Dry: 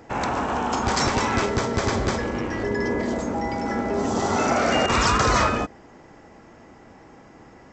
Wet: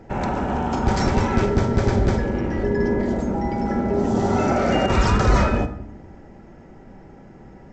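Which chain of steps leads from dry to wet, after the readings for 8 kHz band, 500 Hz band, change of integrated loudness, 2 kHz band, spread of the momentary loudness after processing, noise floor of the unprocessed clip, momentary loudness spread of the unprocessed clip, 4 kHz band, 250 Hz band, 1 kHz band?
-8.0 dB, +2.5 dB, +2.0 dB, -3.0 dB, 6 LU, -49 dBFS, 7 LU, -5.5 dB, +4.5 dB, -1.5 dB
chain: tilt EQ -2.5 dB/octave; band-stop 1.1 kHz, Q 7.6; simulated room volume 2400 m³, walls furnished, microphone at 1.1 m; trim -1.5 dB

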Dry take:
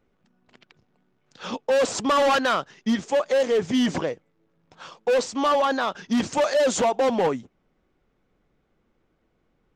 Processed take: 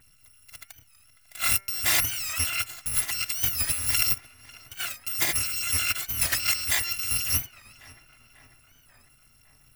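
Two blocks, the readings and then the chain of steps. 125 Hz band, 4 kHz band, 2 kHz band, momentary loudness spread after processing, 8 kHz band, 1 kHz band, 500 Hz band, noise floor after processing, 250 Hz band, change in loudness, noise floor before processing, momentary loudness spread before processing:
+1.5 dB, +3.0 dB, +0.5 dB, 7 LU, +9.0 dB, -14.5 dB, -27.0 dB, -59 dBFS, -22.5 dB, -1.5 dB, -70 dBFS, 11 LU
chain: bit-reversed sample order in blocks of 256 samples; graphic EQ 125/500/2000 Hz +10/-4/+9 dB; compressor with a negative ratio -29 dBFS, ratio -1; de-hum 195.6 Hz, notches 12; tape echo 547 ms, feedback 69%, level -16 dB, low-pass 2.5 kHz; warped record 45 rpm, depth 160 cents; trim +2 dB

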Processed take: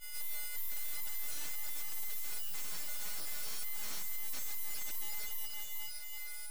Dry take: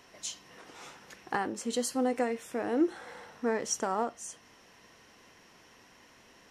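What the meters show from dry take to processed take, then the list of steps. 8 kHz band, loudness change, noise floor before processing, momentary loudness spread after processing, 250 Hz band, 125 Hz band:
-2.0 dB, -7.0 dB, -59 dBFS, 2 LU, -30.0 dB, -3.5 dB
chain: partials quantised in pitch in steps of 6 st; expander -37 dBFS; differentiator; compression 8:1, threshold -41 dBFS, peak gain reduction 23 dB; high-order bell 1.7 kHz -14 dB; on a send: echo that smears into a reverb 461 ms, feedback 46%, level -3 dB; on the sum: overdrive pedal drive 33 dB, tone 7.2 kHz, clips at -30.5 dBFS; peak limiter -37 dBFS, peak gain reduction 4.5 dB; full-wave rectifier; trim +6 dB

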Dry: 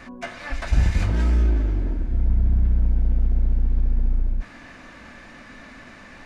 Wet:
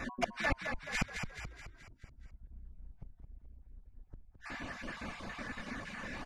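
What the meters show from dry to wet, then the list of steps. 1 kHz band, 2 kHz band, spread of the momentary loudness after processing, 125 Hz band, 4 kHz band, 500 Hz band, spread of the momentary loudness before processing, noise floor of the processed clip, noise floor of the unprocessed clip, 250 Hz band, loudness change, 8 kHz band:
-3.0 dB, -2.0 dB, 23 LU, -25.0 dB, -3.5 dB, -6.0 dB, 21 LU, -62 dBFS, -44 dBFS, -12.5 dB, -16.0 dB, no reading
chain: random holes in the spectrogram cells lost 30%; inverted gate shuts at -21 dBFS, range -34 dB; reverb removal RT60 1.3 s; frequency-shifting echo 214 ms, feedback 52%, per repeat -31 Hz, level -6 dB; trim +2.5 dB

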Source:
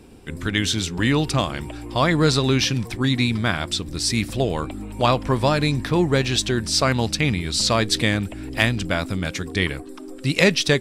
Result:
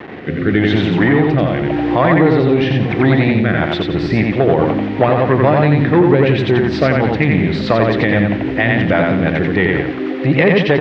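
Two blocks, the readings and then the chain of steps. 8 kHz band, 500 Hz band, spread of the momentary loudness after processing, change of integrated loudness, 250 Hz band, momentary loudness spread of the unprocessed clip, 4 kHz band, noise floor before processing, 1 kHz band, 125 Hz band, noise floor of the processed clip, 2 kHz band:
under -20 dB, +10.0 dB, 5 LU, +7.0 dB, +9.5 dB, 9 LU, -4.5 dB, -38 dBFS, +7.0 dB, +7.5 dB, -22 dBFS, +6.5 dB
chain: tilt shelf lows +7.5 dB, about 1.1 kHz; in parallel at -1 dB: compression 6:1, threshold -23 dBFS, peak gain reduction 15.5 dB; on the sum: word length cut 6-bit, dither none; saturation -7.5 dBFS, distortion -15 dB; rotary cabinet horn 0.9 Hz, later 6.3 Hz, at 3.35 s; cabinet simulation 180–3100 Hz, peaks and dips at 240 Hz -7 dB, 780 Hz +4 dB, 1.9 kHz +8 dB; on a send: feedback delay 88 ms, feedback 37%, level -3 dB; on the sum: loudness maximiser +9 dB; trim -1 dB

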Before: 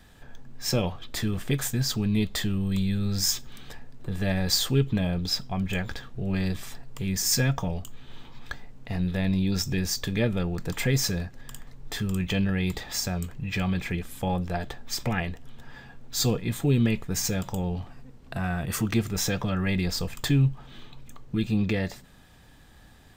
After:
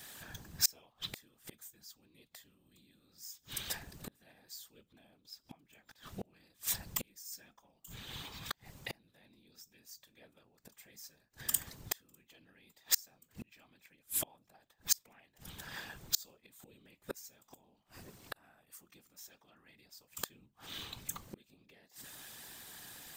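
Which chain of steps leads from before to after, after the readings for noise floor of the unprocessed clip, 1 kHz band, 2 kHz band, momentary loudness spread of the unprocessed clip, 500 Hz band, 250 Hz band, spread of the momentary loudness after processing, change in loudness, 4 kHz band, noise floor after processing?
-52 dBFS, -16.5 dB, -15.5 dB, 14 LU, -23.0 dB, -29.0 dB, 23 LU, -12.0 dB, -12.0 dB, -76 dBFS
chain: whisper effect; dynamic bell 890 Hz, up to +4 dB, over -45 dBFS, Q 1.5; inverted gate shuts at -24 dBFS, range -35 dB; RIAA curve recording; trim +1 dB

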